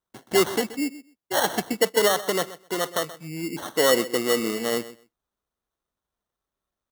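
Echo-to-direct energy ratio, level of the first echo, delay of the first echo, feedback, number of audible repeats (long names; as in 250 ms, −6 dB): −16.0 dB, −16.0 dB, 128 ms, 15%, 2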